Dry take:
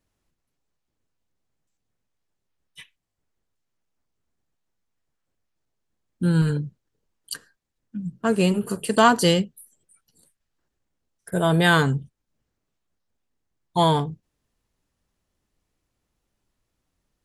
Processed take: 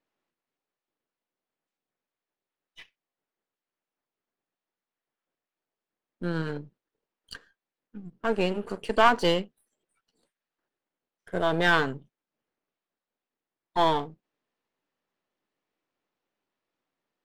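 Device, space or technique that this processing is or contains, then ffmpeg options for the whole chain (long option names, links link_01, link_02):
crystal radio: -af "highpass=310,lowpass=3400,aeval=exprs='if(lt(val(0),0),0.447*val(0),val(0))':channel_layout=same"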